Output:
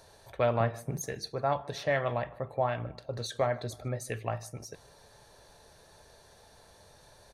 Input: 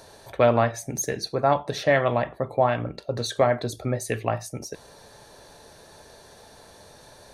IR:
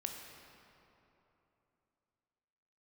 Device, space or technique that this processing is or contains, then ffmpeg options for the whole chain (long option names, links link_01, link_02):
low shelf boost with a cut just above: -filter_complex "[0:a]asettb=1/sr,asplit=3[link_01][link_02][link_03];[link_01]atrim=end=0.604[link_04];[link_02]atrim=start=0.6:end=1.01,asetpts=PTS-STARTPTS,afade=type=in:duration=0.004:curve=qsin,afade=type=out:start_time=0.406:duration=0.004:curve=qsin,equalizer=frequency=160:width_type=o:width=0.67:gain=11,equalizer=frequency=400:width_type=o:width=0.67:gain=7,equalizer=frequency=6300:width_type=o:width=0.67:gain=-11[link_05];[link_03]atrim=start=1.006[link_06];[link_04][link_05]acrossfade=duration=0.004:curve1=hsin:curve2=qsin[link_07];[link_07][link_06]acrossfade=duration=0.004:curve1=qsin:curve2=hsin,lowshelf=frequency=98:gain=6,equalizer=frequency=270:width_type=o:width=1:gain=-5,asplit=2[link_08][link_09];[link_09]adelay=151,lowpass=frequency=3400:poles=1,volume=-22dB,asplit=2[link_10][link_11];[link_11]adelay=151,lowpass=frequency=3400:poles=1,volume=0.5,asplit=2[link_12][link_13];[link_13]adelay=151,lowpass=frequency=3400:poles=1,volume=0.5[link_14];[link_08][link_10][link_12][link_14]amix=inputs=4:normalize=0,volume=-8dB"